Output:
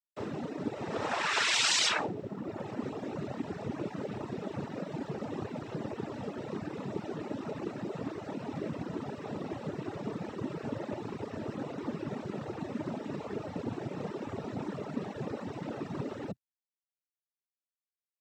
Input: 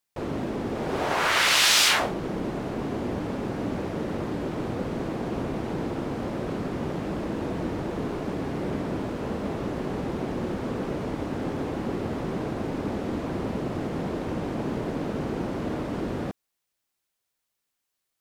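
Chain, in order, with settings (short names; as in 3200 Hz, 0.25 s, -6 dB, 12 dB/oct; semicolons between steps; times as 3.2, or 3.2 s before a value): noise vocoder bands 12; requantised 12-bit, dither none; reverb removal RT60 1.1 s; gain -4.5 dB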